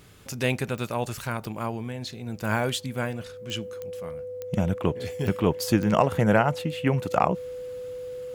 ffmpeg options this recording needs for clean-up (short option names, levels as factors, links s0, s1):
-af "adeclick=t=4,bandreject=f=500:w=30"